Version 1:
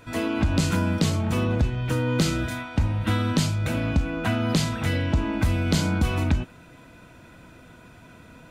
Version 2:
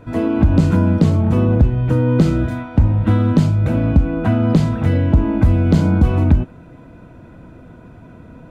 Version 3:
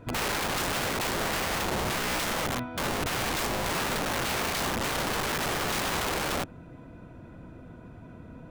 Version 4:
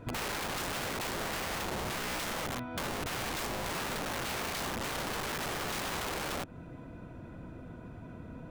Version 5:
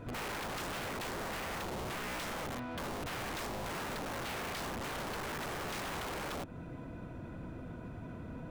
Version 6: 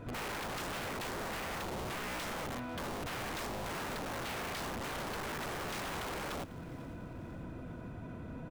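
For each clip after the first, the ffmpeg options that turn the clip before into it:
-af "tiltshelf=f=1.5k:g=10"
-af "aeval=exprs='(mod(8.41*val(0)+1,2)-1)/8.41':c=same,volume=-6dB"
-af "acompressor=threshold=-34dB:ratio=6"
-af "asoftclip=type=hard:threshold=-39.5dB,volume=1.5dB"
-af "aecho=1:1:496|992|1488|1984:0.1|0.051|0.026|0.0133"

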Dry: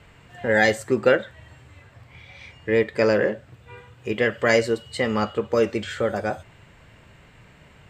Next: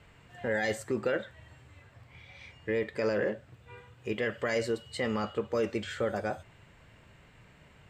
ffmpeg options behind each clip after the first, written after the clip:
-af "alimiter=limit=-14dB:level=0:latency=1:release=15,volume=-6.5dB"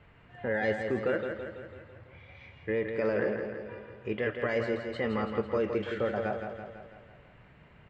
-filter_complex "[0:a]lowpass=2.6k,asplit=2[a][b];[b]aecho=0:1:166|332|498|664|830|996|1162:0.473|0.27|0.154|0.0876|0.0499|0.0285|0.0162[c];[a][c]amix=inputs=2:normalize=0"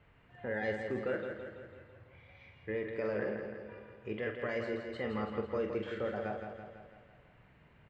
-filter_complex "[0:a]asplit=2[a][b];[b]adelay=47,volume=-8.5dB[c];[a][c]amix=inputs=2:normalize=0,volume=-6.5dB"

